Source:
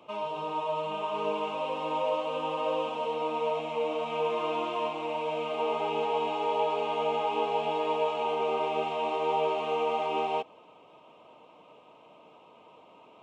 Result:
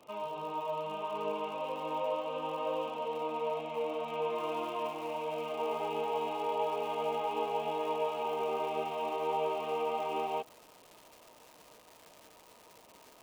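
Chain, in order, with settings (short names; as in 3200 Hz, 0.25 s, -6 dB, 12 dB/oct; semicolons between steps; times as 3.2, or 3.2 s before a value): high shelf 4100 Hz -6.5 dB; crackle 120/s -40 dBFS, from 4.35 s 500/s; gain -4.5 dB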